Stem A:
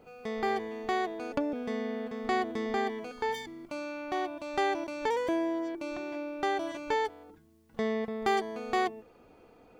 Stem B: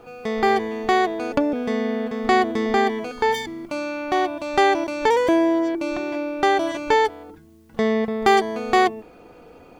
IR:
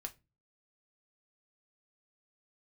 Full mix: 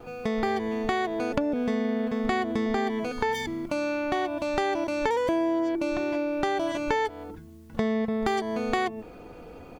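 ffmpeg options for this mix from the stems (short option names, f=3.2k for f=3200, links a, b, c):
-filter_complex "[0:a]volume=-4.5dB[a];[1:a]lowshelf=f=170:g=7.5,acompressor=threshold=-22dB:ratio=1.5,volume=-1,adelay=2.5,volume=0dB[b];[a][b]amix=inputs=2:normalize=0,acompressor=threshold=-26dB:ratio=2"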